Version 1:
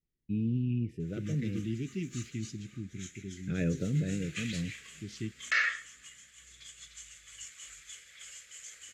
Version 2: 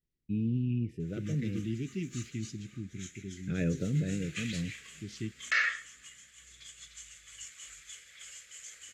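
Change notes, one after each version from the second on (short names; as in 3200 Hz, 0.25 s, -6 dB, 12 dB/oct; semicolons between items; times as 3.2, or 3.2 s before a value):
none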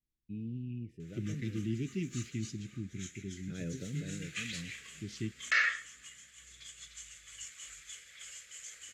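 first voice -9.5 dB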